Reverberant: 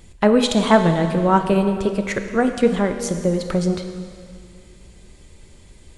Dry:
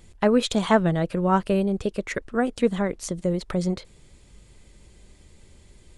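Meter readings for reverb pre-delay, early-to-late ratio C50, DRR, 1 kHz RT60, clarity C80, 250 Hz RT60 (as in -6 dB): 7 ms, 7.5 dB, 6.5 dB, 2.3 s, 8.5 dB, 2.3 s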